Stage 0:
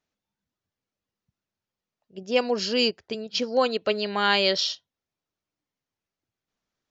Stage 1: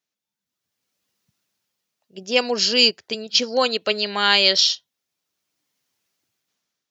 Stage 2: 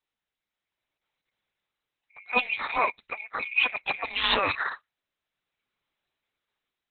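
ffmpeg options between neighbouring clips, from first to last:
ffmpeg -i in.wav -af "dynaudnorm=framelen=220:gausssize=7:maxgain=15dB,highpass=120,highshelf=frequency=2200:gain=11.5,volume=-7.5dB" out.wav
ffmpeg -i in.wav -af "afftfilt=real='real(if(lt(b,920),b+92*(1-2*mod(floor(b/92),2)),b),0)':imag='imag(if(lt(b,920),b+92*(1-2*mod(floor(b/92),2)),b),0)':win_size=2048:overlap=0.75,volume=-6dB" -ar 48000 -c:a libopus -b:a 6k out.opus

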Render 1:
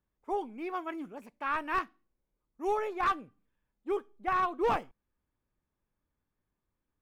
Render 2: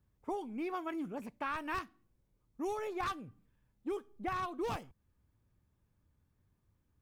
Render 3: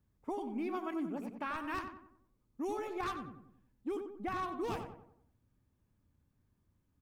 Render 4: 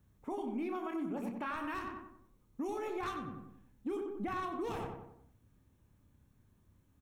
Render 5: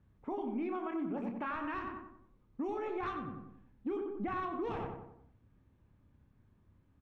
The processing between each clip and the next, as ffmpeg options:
ffmpeg -i in.wav -filter_complex "[0:a]equalizer=frequency=96:width=0.69:gain=14,acrossover=split=3700[link_01][link_02];[link_01]acompressor=threshold=-38dB:ratio=6[link_03];[link_03][link_02]amix=inputs=2:normalize=0,volume=2.5dB" out.wav
ffmpeg -i in.wav -filter_complex "[0:a]equalizer=frequency=250:width=2.1:gain=4.5,asplit=2[link_01][link_02];[link_02]adelay=92,lowpass=frequency=1700:poles=1,volume=-6dB,asplit=2[link_03][link_04];[link_04]adelay=92,lowpass=frequency=1700:poles=1,volume=0.46,asplit=2[link_05][link_06];[link_06]adelay=92,lowpass=frequency=1700:poles=1,volume=0.46,asplit=2[link_07][link_08];[link_08]adelay=92,lowpass=frequency=1700:poles=1,volume=0.46,asplit=2[link_09][link_10];[link_10]adelay=92,lowpass=frequency=1700:poles=1,volume=0.46,asplit=2[link_11][link_12];[link_12]adelay=92,lowpass=frequency=1700:poles=1,volume=0.46[link_13];[link_01][link_03][link_05][link_07][link_09][link_11][link_13]amix=inputs=7:normalize=0,volume=-2dB" out.wav
ffmpeg -i in.wav -filter_complex "[0:a]bandreject=frequency=4800:width=7.3,asplit=2[link_01][link_02];[link_02]adelay=30,volume=-8dB[link_03];[link_01][link_03]amix=inputs=2:normalize=0,alimiter=level_in=13dB:limit=-24dB:level=0:latency=1:release=198,volume=-13dB,volume=6.5dB" out.wav
ffmpeg -i in.wav -af "lowpass=2700,volume=1dB" out.wav

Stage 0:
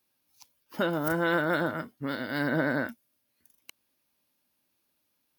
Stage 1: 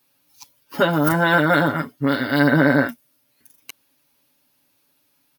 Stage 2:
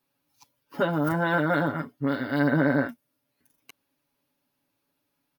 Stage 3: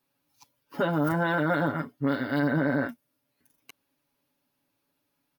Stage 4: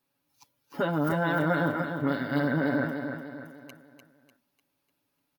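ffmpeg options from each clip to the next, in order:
ffmpeg -i in.wav -af "aecho=1:1:7.1:0.86,volume=8.5dB" out.wav
ffmpeg -i in.wav -af "highshelf=frequency=2300:gain=-9.5,volume=-6dB" out.wav
ffmpeg -i in.wav -af "alimiter=limit=-16.5dB:level=0:latency=1:release=27" out.wav
ffmpeg -i in.wav -af "aecho=1:1:298|596|894|1192|1490:0.447|0.192|0.0826|0.0355|0.0153,volume=-1.5dB" out.wav

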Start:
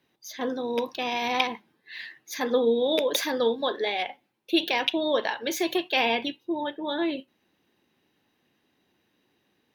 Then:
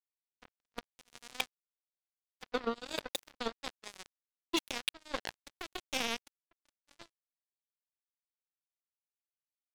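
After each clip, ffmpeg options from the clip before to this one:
ffmpeg -i in.wav -af "acrusher=bits=2:mix=0:aa=0.5,volume=-9dB" out.wav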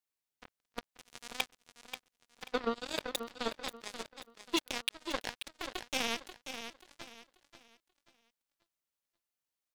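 ffmpeg -i in.wav -filter_complex "[0:a]asplit=2[link_01][link_02];[link_02]alimiter=level_in=4.5dB:limit=-24dB:level=0:latency=1:release=150,volume=-4.5dB,volume=-1dB[link_03];[link_01][link_03]amix=inputs=2:normalize=0,aecho=1:1:535|1070|1605|2140:0.335|0.107|0.0343|0.011,volume=-1.5dB" out.wav

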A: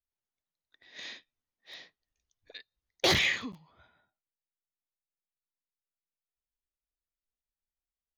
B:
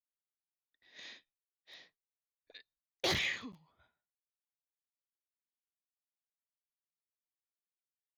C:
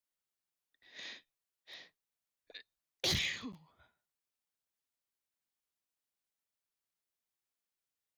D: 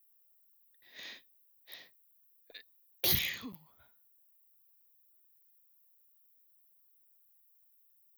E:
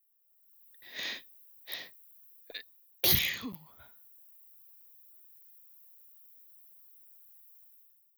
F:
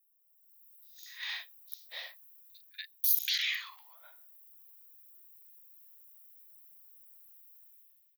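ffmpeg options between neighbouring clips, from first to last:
ffmpeg -i in.wav -af "agate=range=-33dB:threshold=-59dB:ratio=3:detection=peak,volume=-7.5dB" out.wav
ffmpeg -i in.wav -filter_complex "[0:a]acrossover=split=240|3000[link_01][link_02][link_03];[link_02]acompressor=threshold=-44dB:ratio=6[link_04];[link_01][link_04][link_03]amix=inputs=3:normalize=0,volume=3.5dB" out.wav
ffmpeg -i in.wav -af "aexciter=amount=13:drive=7.5:freq=11000" out.wav
ffmpeg -i in.wav -af "dynaudnorm=framelen=210:gausssize=5:maxgain=15dB,volume=-5dB" out.wav
ffmpeg -i in.wav -filter_complex "[0:a]acrossover=split=5800[link_01][link_02];[link_01]adelay=240[link_03];[link_03][link_02]amix=inputs=2:normalize=0,afftfilt=real='re*gte(b*sr/1024,450*pow(1700/450,0.5+0.5*sin(2*PI*0.41*pts/sr)))':imag='im*gte(b*sr/1024,450*pow(1700/450,0.5+0.5*sin(2*PI*0.41*pts/sr)))':win_size=1024:overlap=0.75" out.wav

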